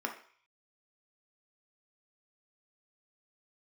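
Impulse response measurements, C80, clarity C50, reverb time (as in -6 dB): 14.0 dB, 8.5 dB, 0.50 s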